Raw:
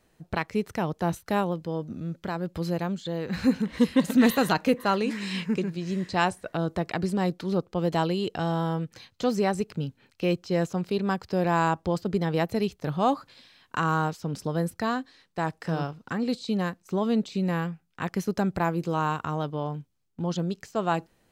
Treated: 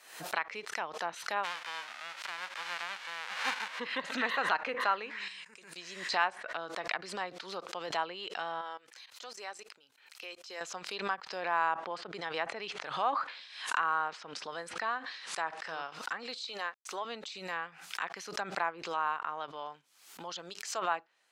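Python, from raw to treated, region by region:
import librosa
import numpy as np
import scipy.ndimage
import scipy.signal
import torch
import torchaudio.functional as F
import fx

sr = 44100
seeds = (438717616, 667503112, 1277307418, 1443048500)

y = fx.envelope_flatten(x, sr, power=0.1, at=(1.43, 3.78), fade=0.02)
y = fx.highpass(y, sr, hz=300.0, slope=6, at=(1.43, 3.78), fade=0.02)
y = fx.transient(y, sr, attack_db=2, sustain_db=7, at=(1.43, 3.78), fade=0.02)
y = fx.chain(y, sr, fx.level_steps(step_db=21),
    fx.peak_eq(hz=8800.0, db=11.0, octaves=0.56), at=(5.28, 5.76))
y = fx.chain(y, sr, fx.highpass(hz=61.0, slope=12),
    fx.peak_eq(hz=170.0, db=-13.5, octaves=0.72),
    fx.level_steps(step_db=17), at=(8.61, 10.61))
y = fx.chain(y, sr, fx.resample_bad(factor=2, down='none', up='filtered'),
    fx.sustainer(db_per_s=84.0), at=(11.6, 15.67))
y = fx.chain(y, sr, fx.highpass(hz=340.0, slope=12),
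    fx.sample_gate(floor_db=-55.5), at=(16.46, 17.05))
y = scipy.signal.sosfilt(scipy.signal.butter(2, 1100.0, 'highpass', fs=sr, output='sos'), y)
y = fx.env_lowpass_down(y, sr, base_hz=2100.0, full_db=-31.5)
y = fx.pre_swell(y, sr, db_per_s=82.0)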